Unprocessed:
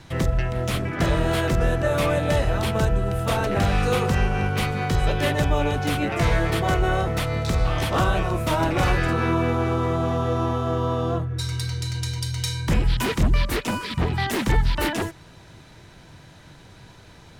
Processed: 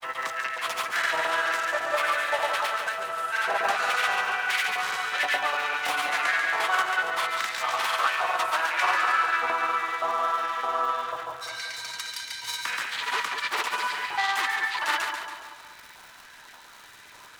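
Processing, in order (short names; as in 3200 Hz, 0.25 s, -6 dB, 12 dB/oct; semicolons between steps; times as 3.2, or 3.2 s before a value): self-modulated delay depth 0.093 ms; LFO high-pass saw up 1.7 Hz 870–1900 Hz; crackle 330/s -36 dBFS; grains, pitch spread up and down by 0 st; on a send: split-band echo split 1200 Hz, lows 0.192 s, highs 0.14 s, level -6 dB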